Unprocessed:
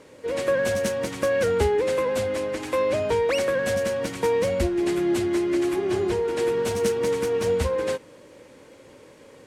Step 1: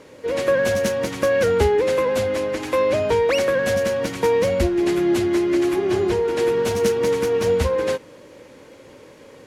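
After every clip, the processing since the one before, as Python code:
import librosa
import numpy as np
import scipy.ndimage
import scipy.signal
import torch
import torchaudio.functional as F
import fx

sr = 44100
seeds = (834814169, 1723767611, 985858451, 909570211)

y = fx.peak_eq(x, sr, hz=8400.0, db=-7.0, octaves=0.23)
y = y * librosa.db_to_amplitude(4.0)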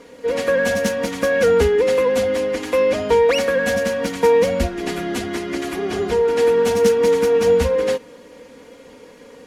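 y = x + 0.7 * np.pad(x, (int(4.2 * sr / 1000.0), 0))[:len(x)]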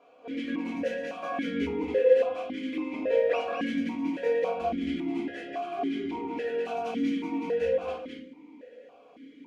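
y = x + 10.0 ** (-5.0 / 20.0) * np.pad(x, (int(211 * sr / 1000.0), 0))[:len(x)]
y = fx.room_shoebox(y, sr, seeds[0], volume_m3=360.0, walls='furnished', distance_m=3.0)
y = fx.vowel_held(y, sr, hz=3.6)
y = y * librosa.db_to_amplitude(-4.5)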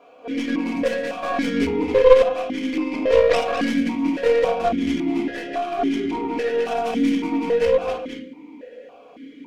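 y = fx.tracing_dist(x, sr, depth_ms=0.18)
y = y * librosa.db_to_amplitude(8.5)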